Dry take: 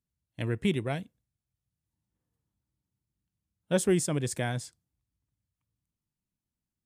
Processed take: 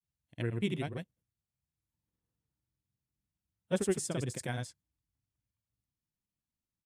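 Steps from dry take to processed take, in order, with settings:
granular cloud, grains 20 per second, pitch spread up and down by 0 semitones
level −3.5 dB

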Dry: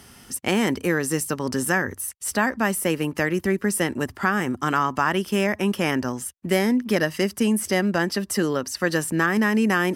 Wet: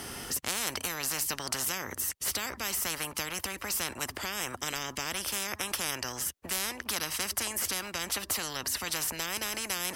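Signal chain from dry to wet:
parametric band 300 Hz +6 dB 1.6 octaves
every bin compressed towards the loudest bin 10 to 1
level −6.5 dB

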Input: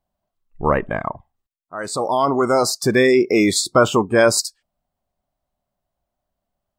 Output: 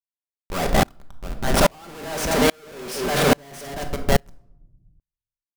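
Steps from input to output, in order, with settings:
speed change +22%
multi-tap delay 43/85/224/687 ms −16/−18/−11.5/−14.5 dB
comparator with hysteresis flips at −24 dBFS
rectangular room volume 890 cubic metres, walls furnished, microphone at 1.2 metres
tremolo with a ramp in dB swelling 1.2 Hz, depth 36 dB
level +6 dB

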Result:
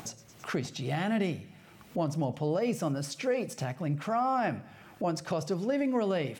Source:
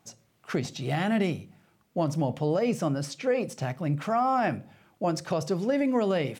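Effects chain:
feedback echo with a high-pass in the loop 109 ms, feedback 59%, high-pass 860 Hz, level −21 dB
upward compression, threshold −27 dBFS
0:02.62–0:03.64: high-shelf EQ 10,000 Hz +7.5 dB
level −3.5 dB

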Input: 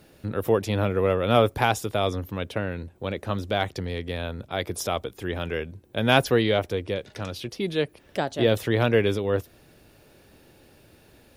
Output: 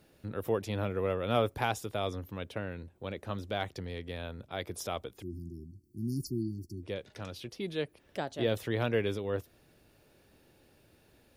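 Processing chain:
0:05.22–0:06.83: linear-phase brick-wall band-stop 380–4,300 Hz
level −9 dB

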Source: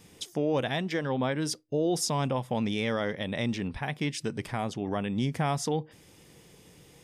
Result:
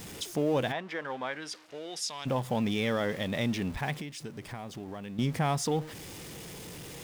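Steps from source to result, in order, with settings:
converter with a step at zero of −39 dBFS
0:00.71–0:02.25: resonant band-pass 970 Hz → 4,000 Hz, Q 0.8
0:03.94–0:05.19: downward compressor, threshold −37 dBFS, peak gain reduction 11.5 dB
level −1 dB

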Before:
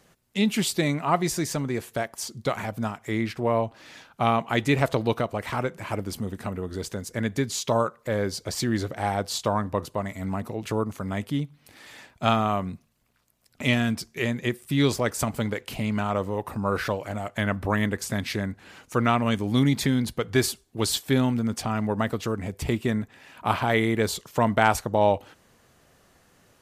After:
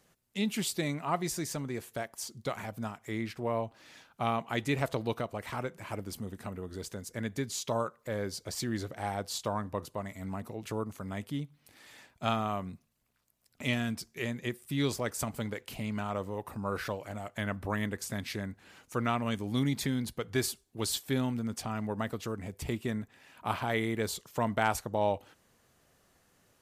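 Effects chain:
high-shelf EQ 6,500 Hz +4.5 dB
level −8.5 dB

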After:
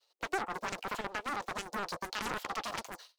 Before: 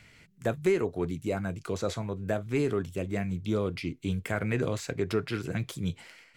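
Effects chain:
running median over 9 samples
downward expander −47 dBFS
Butterworth high-pass 250 Hz 36 dB per octave
in parallel at −2 dB: compressor whose output falls as the input rises −35 dBFS, ratio −0.5
on the sum: wrong playback speed 7.5 ips tape played at 15 ips
highs frequency-modulated by the lows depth 0.88 ms
level −7 dB

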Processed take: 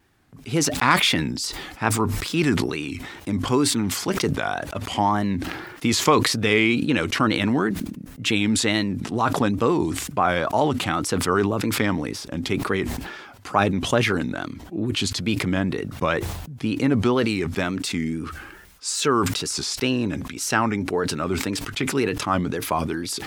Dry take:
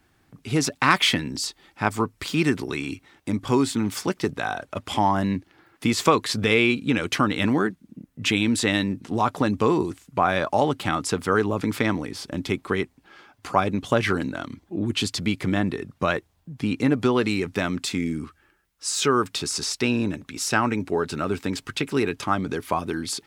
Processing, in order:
tape wow and flutter 110 cents
level that may fall only so fast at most 44 dB per second

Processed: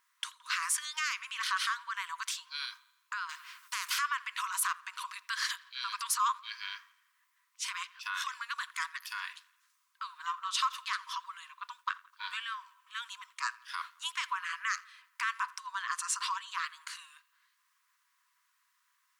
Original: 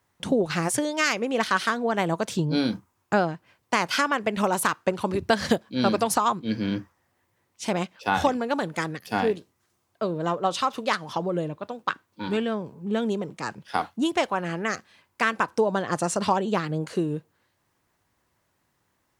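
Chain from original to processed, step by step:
brickwall limiter −18.5 dBFS, peak gain reduction 10 dB
linear-phase brick-wall high-pass 950 Hz
on a send: delay with a low-pass on its return 85 ms, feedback 54%, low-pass 3,700 Hz, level −22 dB
0:03.29–0:03.99: on the sum: every bin compressed towards the loudest bin 2 to 1

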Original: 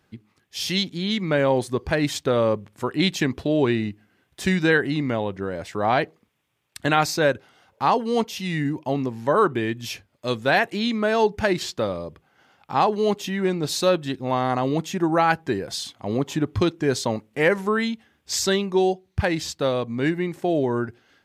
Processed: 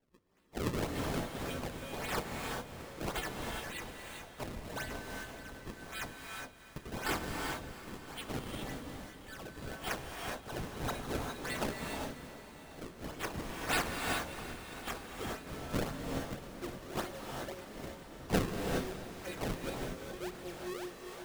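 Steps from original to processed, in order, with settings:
high-pass filter sweep 1,500 Hz → 95 Hz, 0:15.79–0:17.52
reversed playback
downward compressor 6 to 1, threshold −22 dBFS, peak gain reduction 11.5 dB
reversed playback
first-order pre-emphasis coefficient 0.9
phaser with its sweep stopped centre 400 Hz, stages 4
stiff-string resonator 180 Hz, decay 0.32 s, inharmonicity 0.002
sample-and-hold swept by an LFO 34×, swing 160% 1.8 Hz
on a send: feedback delay with all-pass diffusion 716 ms, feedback 41%, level −13.5 dB
on the sum: reverb whose tail is shaped and stops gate 440 ms rising, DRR 1.5 dB
level +12 dB

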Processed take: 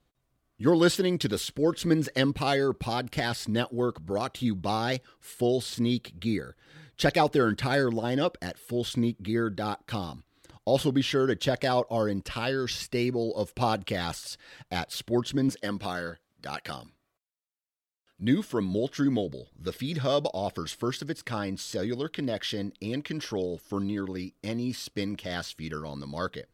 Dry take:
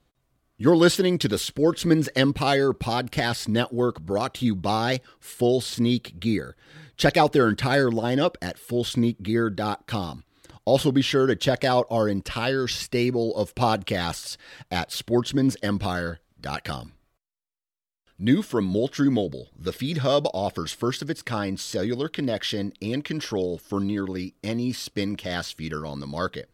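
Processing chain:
0:15.49–0:18.22: high-pass filter 220 Hz 6 dB per octave
level −4.5 dB

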